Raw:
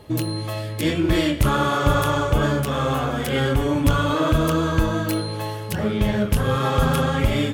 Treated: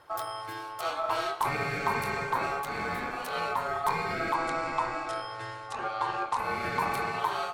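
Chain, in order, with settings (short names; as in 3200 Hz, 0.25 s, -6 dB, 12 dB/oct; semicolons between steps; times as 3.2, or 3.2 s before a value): 4.34–6.39 steep low-pass 9000 Hz 48 dB/oct; ring modulator 980 Hz; gain -8 dB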